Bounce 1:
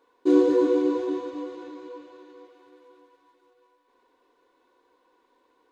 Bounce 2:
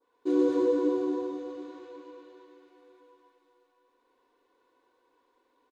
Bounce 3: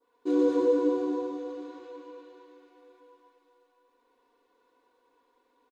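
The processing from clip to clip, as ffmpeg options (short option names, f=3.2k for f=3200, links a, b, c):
-af "aecho=1:1:122.4|221.6:0.794|0.794,adynamicequalizer=threshold=0.00631:dfrequency=2500:dqfactor=0.91:tfrequency=2500:tqfactor=0.91:attack=5:release=100:ratio=0.375:range=3:mode=cutabove:tftype=bell,volume=-8dB"
-af "aecho=1:1:4.2:0.38"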